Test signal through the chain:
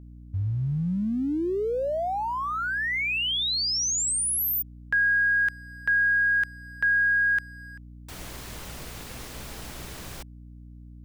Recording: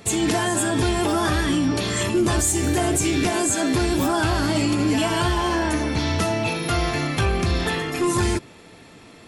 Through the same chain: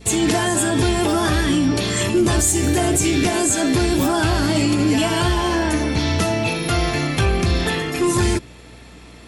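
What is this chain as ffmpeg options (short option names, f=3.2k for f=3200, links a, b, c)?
-filter_complex "[0:a]adynamicequalizer=threshold=0.00891:dfrequency=1100:dqfactor=1.2:tfrequency=1100:tqfactor=1.2:attack=5:release=100:ratio=0.375:range=1.5:mode=cutabove:tftype=bell,acrossover=split=2000[a][b];[a]aeval=exprs='sgn(val(0))*max(abs(val(0))-0.00119,0)':c=same[c];[c][b]amix=inputs=2:normalize=0,aeval=exprs='val(0)+0.00447*(sin(2*PI*60*n/s)+sin(2*PI*2*60*n/s)/2+sin(2*PI*3*60*n/s)/3+sin(2*PI*4*60*n/s)/4+sin(2*PI*5*60*n/s)/5)':c=same,volume=3.5dB"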